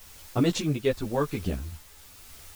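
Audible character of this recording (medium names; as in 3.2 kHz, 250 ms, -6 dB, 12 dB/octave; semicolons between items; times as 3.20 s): a quantiser's noise floor 8-bit, dither triangular; tremolo triangle 0.93 Hz, depth 40%; a shimmering, thickened sound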